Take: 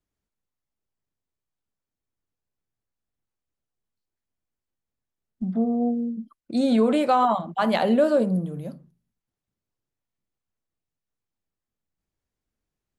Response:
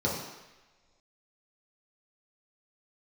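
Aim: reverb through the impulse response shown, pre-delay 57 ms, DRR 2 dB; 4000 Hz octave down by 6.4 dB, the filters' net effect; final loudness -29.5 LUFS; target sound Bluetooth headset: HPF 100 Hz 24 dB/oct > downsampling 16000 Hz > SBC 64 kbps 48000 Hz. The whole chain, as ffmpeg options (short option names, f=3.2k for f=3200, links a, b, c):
-filter_complex "[0:a]equalizer=f=4k:t=o:g=-8.5,asplit=2[a][b];[1:a]atrim=start_sample=2205,adelay=57[c];[b][c]afir=irnorm=-1:irlink=0,volume=-12dB[d];[a][d]amix=inputs=2:normalize=0,highpass=f=100:w=0.5412,highpass=f=100:w=1.3066,aresample=16000,aresample=44100,volume=-11dB" -ar 48000 -c:a sbc -b:a 64k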